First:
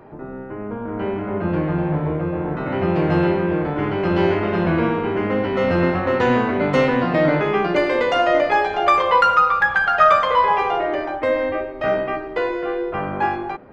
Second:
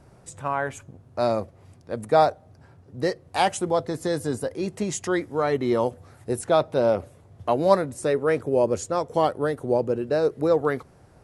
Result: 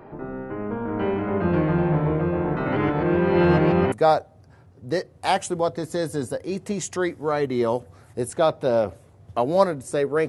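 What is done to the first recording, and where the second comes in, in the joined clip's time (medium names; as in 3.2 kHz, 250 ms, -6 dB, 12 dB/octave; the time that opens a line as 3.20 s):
first
2.76–3.92 s: reverse
3.92 s: go over to second from 2.03 s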